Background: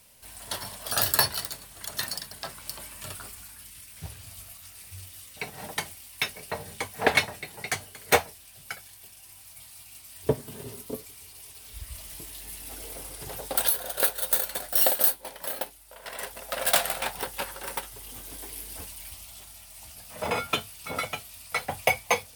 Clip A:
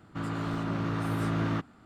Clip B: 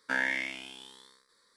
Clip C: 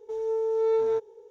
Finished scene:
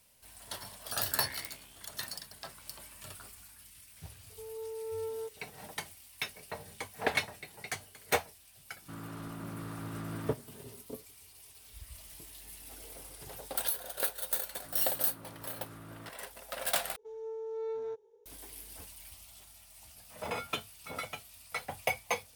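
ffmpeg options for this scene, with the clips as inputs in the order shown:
ffmpeg -i bed.wav -i cue0.wav -i cue1.wav -i cue2.wav -filter_complex "[3:a]asplit=2[link_01][link_02];[1:a]asplit=2[link_03][link_04];[0:a]volume=-8.5dB[link_05];[link_04]equalizer=frequency=190:width_type=o:width=1.1:gain=-5[link_06];[link_05]asplit=2[link_07][link_08];[link_07]atrim=end=16.964[link_09];[link_02]atrim=end=1.3,asetpts=PTS-STARTPTS,volume=-13dB[link_10];[link_08]atrim=start=18.256[link_11];[2:a]atrim=end=1.56,asetpts=PTS-STARTPTS,volume=-15.5dB,afade=type=in:duration=0.004:curve=hsin,afade=type=out:start_time=1.556:duration=0.004:curve=hsin,adelay=1020[link_12];[link_01]atrim=end=1.3,asetpts=PTS-STARTPTS,volume=-14dB,afade=type=in:duration=0.004:curve=hsin,afade=type=out:start_time=1.296:duration=0.004:curve=hsin,adelay=189189S[link_13];[link_03]atrim=end=1.85,asetpts=PTS-STARTPTS,volume=-11dB,afade=type=in:duration=0.004:curve=hsin,afade=type=out:start_time=1.846:duration=0.004:curve=hsin,adelay=8730[link_14];[link_06]atrim=end=1.85,asetpts=PTS-STARTPTS,volume=-18dB,afade=type=in:duration=0.004:curve=hsin,afade=type=out:start_time=1.846:duration=0.004:curve=hsin,adelay=14490[link_15];[link_09][link_10]acrossfade=duration=0.004:curve1=hsin:curve2=hsin[link_16];[link_16][link_11]acrossfade=duration=0.004:curve1=hsin:curve2=hsin[link_17];[link_17][link_12][link_13][link_14][link_15]amix=inputs=5:normalize=0" out.wav

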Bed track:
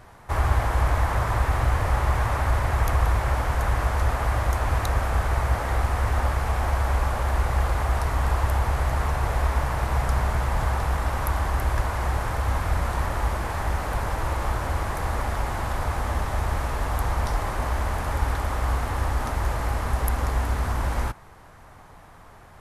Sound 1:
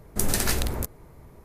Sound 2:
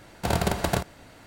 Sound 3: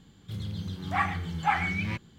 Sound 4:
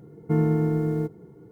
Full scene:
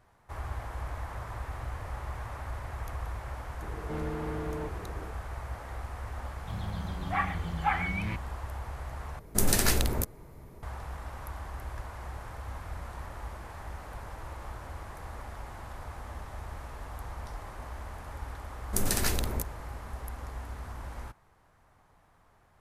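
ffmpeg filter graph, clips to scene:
ffmpeg -i bed.wav -i cue0.wav -i cue1.wav -i cue2.wav -i cue3.wav -filter_complex "[1:a]asplit=2[link_01][link_02];[0:a]volume=-15.5dB[link_03];[4:a]asplit=2[link_04][link_05];[link_05]highpass=frequency=720:poles=1,volume=35dB,asoftclip=type=tanh:threshold=-11.5dB[link_06];[link_04][link_06]amix=inputs=2:normalize=0,lowpass=frequency=1100:poles=1,volume=-6dB[link_07];[3:a]acrossover=split=3500[link_08][link_09];[link_09]acompressor=threshold=-55dB:ratio=4:attack=1:release=60[link_10];[link_08][link_10]amix=inputs=2:normalize=0[link_11];[link_03]asplit=2[link_12][link_13];[link_12]atrim=end=9.194[link_14];[link_01]atrim=end=1.44,asetpts=PTS-STARTPTS,volume=-0.5dB[link_15];[link_13]atrim=start=10.626[link_16];[link_07]atrim=end=1.51,asetpts=PTS-STARTPTS,volume=-18dB,afade=type=in:duration=0.004:curve=hsin,afade=type=out:start_time=1.506:duration=0.004:curve=hsin,adelay=3600[link_17];[link_11]atrim=end=2.18,asetpts=PTS-STARTPTS,volume=-2.5dB,afade=type=in:duration=0.004:curve=hsin,afade=type=out:start_time=2.176:duration=0.004:curve=hsin,adelay=6190[link_18];[link_02]atrim=end=1.44,asetpts=PTS-STARTPTS,volume=-4dB,afade=type=in:duration=0.004:curve=hsin,afade=type=out:start_time=1.436:duration=0.004:curve=hsin,adelay=18570[link_19];[link_14][link_15]acrossfade=duration=0.004:curve1=hsin:curve2=hsin[link_20];[link_20][link_16]acrossfade=duration=0.004:curve1=hsin:curve2=hsin[link_21];[link_21][link_17][link_18][link_19]amix=inputs=4:normalize=0" out.wav

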